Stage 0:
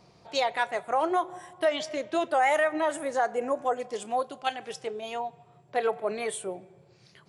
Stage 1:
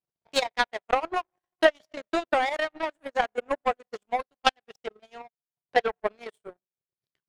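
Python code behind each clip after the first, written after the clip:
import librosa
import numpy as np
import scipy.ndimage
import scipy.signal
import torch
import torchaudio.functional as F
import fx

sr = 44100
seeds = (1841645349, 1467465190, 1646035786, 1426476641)

y = fx.transient(x, sr, attack_db=7, sustain_db=-9)
y = scipy.signal.sosfilt(scipy.signal.bessel(2, 5700.0, 'lowpass', norm='mag', fs=sr, output='sos'), y)
y = fx.power_curve(y, sr, exponent=2.0)
y = y * 10.0 ** (6.0 / 20.0)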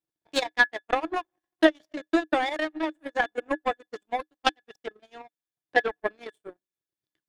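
y = fx.small_body(x, sr, hz=(310.0, 1700.0, 3500.0), ring_ms=80, db=14)
y = y * 10.0 ** (-2.0 / 20.0)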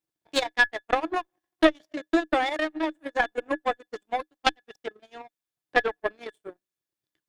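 y = fx.diode_clip(x, sr, knee_db=-15.0)
y = y * 10.0 ** (2.0 / 20.0)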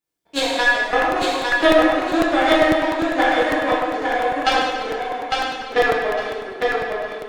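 y = fx.echo_feedback(x, sr, ms=854, feedback_pct=24, wet_db=-3.5)
y = fx.rev_plate(y, sr, seeds[0], rt60_s=1.7, hf_ratio=0.8, predelay_ms=0, drr_db=-8.0)
y = fx.buffer_crackle(y, sr, first_s=0.92, period_s=0.1, block=64, kind='repeat')
y = y * 10.0 ** (-1.0 / 20.0)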